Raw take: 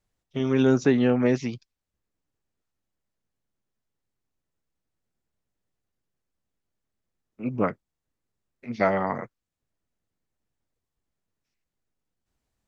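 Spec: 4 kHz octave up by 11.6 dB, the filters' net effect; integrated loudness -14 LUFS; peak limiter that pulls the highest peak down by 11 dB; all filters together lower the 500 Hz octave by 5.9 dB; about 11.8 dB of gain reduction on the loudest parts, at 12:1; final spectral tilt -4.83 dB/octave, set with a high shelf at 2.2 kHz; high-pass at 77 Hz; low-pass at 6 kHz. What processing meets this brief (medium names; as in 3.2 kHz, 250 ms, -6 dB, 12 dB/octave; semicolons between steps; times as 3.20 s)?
high-pass 77 Hz; low-pass 6 kHz; peaking EQ 500 Hz -8.5 dB; treble shelf 2.2 kHz +8 dB; peaking EQ 4 kHz +8.5 dB; compression 12:1, threshold -29 dBFS; trim +24 dB; peak limiter -2.5 dBFS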